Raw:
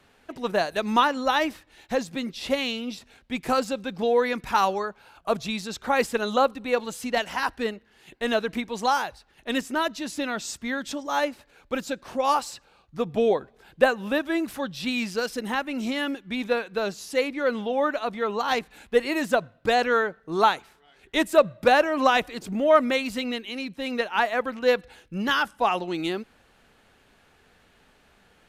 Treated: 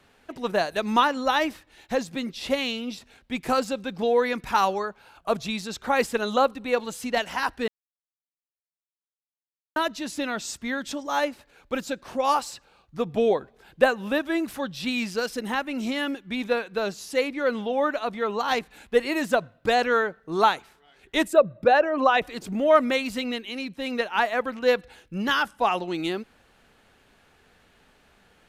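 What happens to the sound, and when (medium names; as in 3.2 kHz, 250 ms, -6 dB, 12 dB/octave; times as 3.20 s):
7.68–9.76 s: mute
21.28–22.22 s: resonances exaggerated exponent 1.5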